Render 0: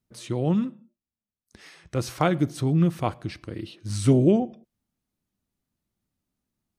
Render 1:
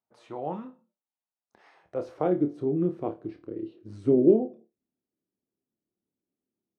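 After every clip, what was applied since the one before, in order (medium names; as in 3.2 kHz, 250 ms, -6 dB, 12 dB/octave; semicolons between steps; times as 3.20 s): band-pass sweep 820 Hz -> 380 Hz, 1.73–2.35 s; flutter echo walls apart 4.7 m, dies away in 0.21 s; trim +2.5 dB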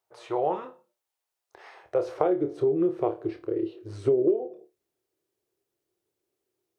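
FFT filter 130 Hz 0 dB, 230 Hz -18 dB, 370 Hz +7 dB, 620 Hz +5 dB; compression 6:1, threshold -25 dBFS, peak gain reduction 16.5 dB; trim +4.5 dB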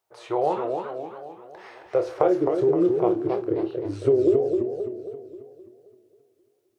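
modulated delay 265 ms, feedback 51%, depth 192 cents, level -5 dB; trim +3 dB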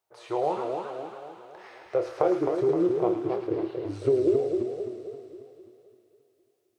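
feedback echo behind a high-pass 109 ms, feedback 78%, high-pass 1.5 kHz, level -4.5 dB; trim -3.5 dB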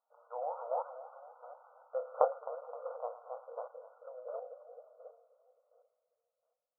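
square tremolo 1.4 Hz, depth 65%, duty 15%; brick-wall FIR band-pass 470–1500 Hz; trim -1 dB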